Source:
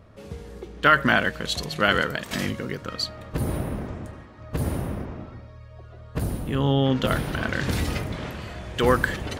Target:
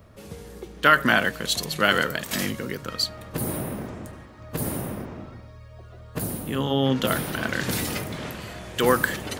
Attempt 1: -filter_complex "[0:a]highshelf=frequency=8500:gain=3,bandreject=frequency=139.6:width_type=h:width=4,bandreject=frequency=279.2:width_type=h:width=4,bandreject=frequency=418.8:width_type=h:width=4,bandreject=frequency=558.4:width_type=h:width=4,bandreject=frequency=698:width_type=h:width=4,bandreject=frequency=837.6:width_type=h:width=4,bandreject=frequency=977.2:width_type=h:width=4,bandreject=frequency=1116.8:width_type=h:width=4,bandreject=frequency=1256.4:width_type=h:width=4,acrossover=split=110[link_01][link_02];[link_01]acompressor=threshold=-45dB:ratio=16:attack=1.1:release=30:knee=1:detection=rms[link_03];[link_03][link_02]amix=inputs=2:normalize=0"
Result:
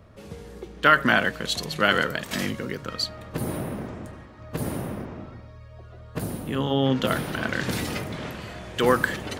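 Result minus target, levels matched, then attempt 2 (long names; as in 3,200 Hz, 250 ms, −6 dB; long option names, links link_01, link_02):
8,000 Hz band −5.0 dB
-filter_complex "[0:a]highshelf=frequency=8500:gain=15,bandreject=frequency=139.6:width_type=h:width=4,bandreject=frequency=279.2:width_type=h:width=4,bandreject=frequency=418.8:width_type=h:width=4,bandreject=frequency=558.4:width_type=h:width=4,bandreject=frequency=698:width_type=h:width=4,bandreject=frequency=837.6:width_type=h:width=4,bandreject=frequency=977.2:width_type=h:width=4,bandreject=frequency=1116.8:width_type=h:width=4,bandreject=frequency=1256.4:width_type=h:width=4,acrossover=split=110[link_01][link_02];[link_01]acompressor=threshold=-45dB:ratio=16:attack=1.1:release=30:knee=1:detection=rms[link_03];[link_03][link_02]amix=inputs=2:normalize=0"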